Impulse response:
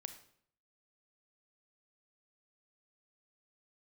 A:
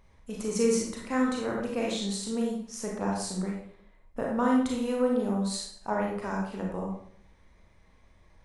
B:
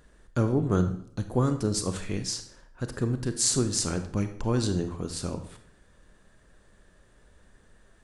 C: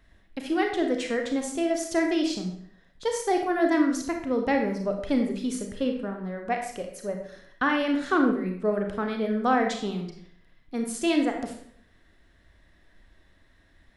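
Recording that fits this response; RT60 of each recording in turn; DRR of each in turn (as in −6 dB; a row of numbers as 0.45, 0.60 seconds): B; 0.65, 0.65, 0.65 seconds; −2.0, 8.5, 3.0 decibels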